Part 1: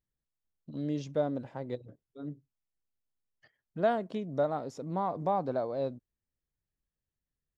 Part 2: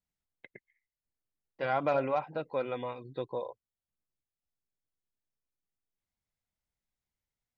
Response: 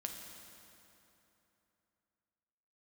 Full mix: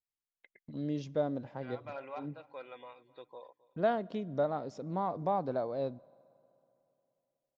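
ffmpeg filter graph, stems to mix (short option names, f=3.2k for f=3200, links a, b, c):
-filter_complex "[0:a]lowpass=f=6.2k:w=0.5412,lowpass=f=6.2k:w=1.3066,agate=range=-18dB:threshold=-54dB:ratio=16:detection=peak,volume=-2.5dB,asplit=3[a][b][c];[b]volume=-19dB[d];[1:a]highpass=f=830:p=1,volume=-8.5dB,asplit=2[e][f];[f]volume=-21dB[g];[c]apad=whole_len=334059[h];[e][h]sidechaincompress=threshold=-42dB:ratio=4:attack=5.6:release=302[i];[2:a]atrim=start_sample=2205[j];[d][j]afir=irnorm=-1:irlink=0[k];[g]aecho=0:1:264|528|792|1056:1|0.3|0.09|0.027[l];[a][i][k][l]amix=inputs=4:normalize=0"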